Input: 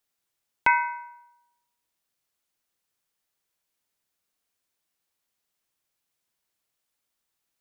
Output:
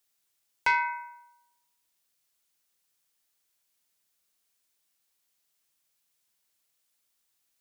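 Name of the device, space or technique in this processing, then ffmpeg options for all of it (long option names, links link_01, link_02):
soft clipper into limiter: -af "asoftclip=type=tanh:threshold=-12.5dB,alimiter=limit=-16dB:level=0:latency=1:release=222,highshelf=frequency=2400:gain=8,volume=-2dB"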